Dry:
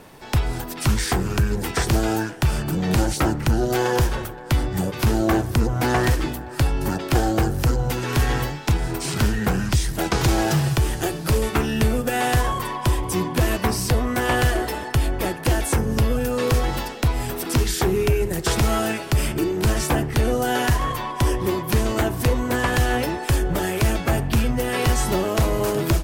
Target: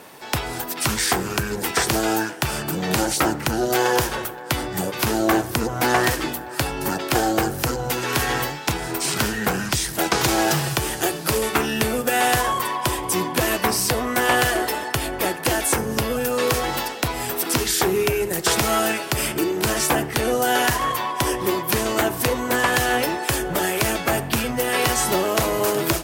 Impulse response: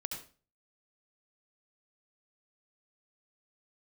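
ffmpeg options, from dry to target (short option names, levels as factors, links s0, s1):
-filter_complex "[0:a]highpass=f=420:p=1,highshelf=f=11000:g=5,asplit=2[s0][s1];[1:a]atrim=start_sample=2205[s2];[s1][s2]afir=irnorm=-1:irlink=0,volume=0.106[s3];[s0][s3]amix=inputs=2:normalize=0,volume=1.5"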